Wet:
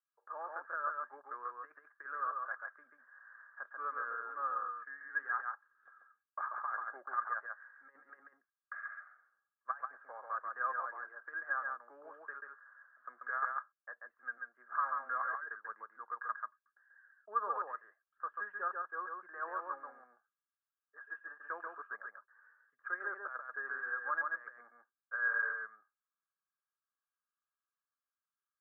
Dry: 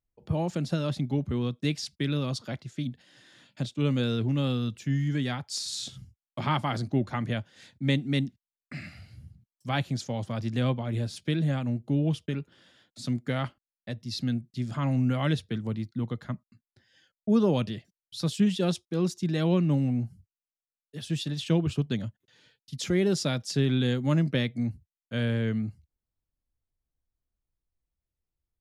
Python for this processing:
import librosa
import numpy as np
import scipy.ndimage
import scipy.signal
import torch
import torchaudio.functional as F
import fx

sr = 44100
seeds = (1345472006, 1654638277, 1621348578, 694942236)

y = scipy.signal.sosfilt(scipy.signal.butter(4, 1200.0, 'highpass', fs=sr, output='sos'), x)
y = fx.over_compress(y, sr, threshold_db=-39.0, ratio=-0.5)
y = scipy.signal.sosfilt(scipy.signal.cheby1(6, 9, 1700.0, 'lowpass', fs=sr, output='sos'), y)
y = y + 10.0 ** (-3.5 / 20.0) * np.pad(y, (int(138 * sr / 1000.0), 0))[:len(y)]
y = F.gain(torch.from_numpy(y), 11.0).numpy()